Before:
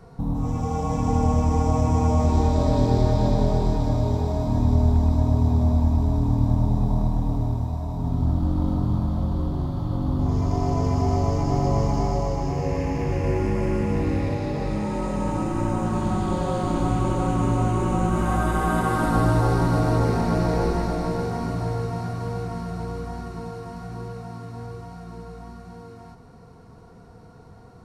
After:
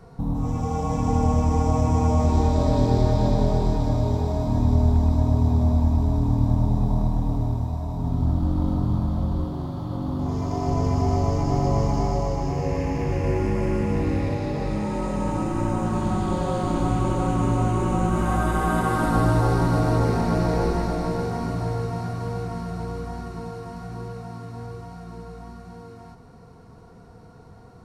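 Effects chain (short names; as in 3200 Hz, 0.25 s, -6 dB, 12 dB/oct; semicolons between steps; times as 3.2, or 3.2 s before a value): 9.44–10.67 HPF 140 Hz 6 dB/oct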